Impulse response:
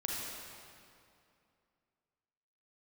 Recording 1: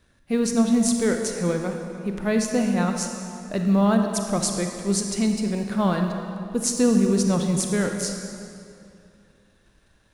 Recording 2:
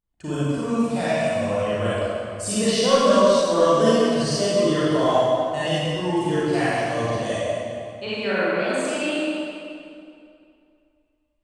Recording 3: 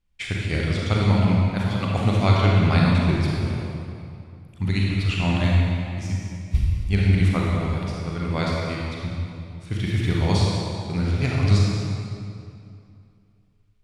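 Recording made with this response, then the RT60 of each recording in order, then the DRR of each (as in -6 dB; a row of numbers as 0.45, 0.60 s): 3; 2.5, 2.5, 2.5 s; 3.5, -11.0, -3.5 dB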